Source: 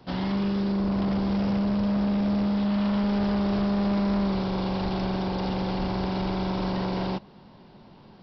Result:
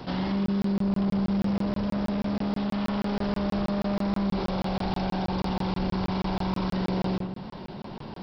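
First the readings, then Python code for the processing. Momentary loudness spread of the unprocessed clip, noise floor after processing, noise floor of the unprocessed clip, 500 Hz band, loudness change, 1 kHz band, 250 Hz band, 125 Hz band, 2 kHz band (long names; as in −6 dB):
4 LU, below −85 dBFS, −51 dBFS, −1.5 dB, −2.0 dB, −0.5 dB, −2.0 dB, −1.0 dB, −1.0 dB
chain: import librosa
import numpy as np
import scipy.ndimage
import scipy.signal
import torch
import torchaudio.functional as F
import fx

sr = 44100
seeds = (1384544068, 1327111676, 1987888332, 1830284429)

y = fx.hum_notches(x, sr, base_hz=60, count=2)
y = fx.echo_filtered(y, sr, ms=86, feedback_pct=38, hz=2000.0, wet_db=-7)
y = fx.buffer_crackle(y, sr, first_s=0.46, period_s=0.16, block=1024, kind='zero')
y = fx.env_flatten(y, sr, amount_pct=50)
y = y * librosa.db_to_amplitude(-4.0)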